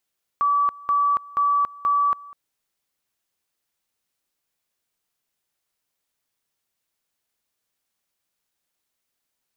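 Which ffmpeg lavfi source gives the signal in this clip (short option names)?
-f lavfi -i "aevalsrc='pow(10,(-16.5-22*gte(mod(t,0.48),0.28))/20)*sin(2*PI*1150*t)':d=1.92:s=44100"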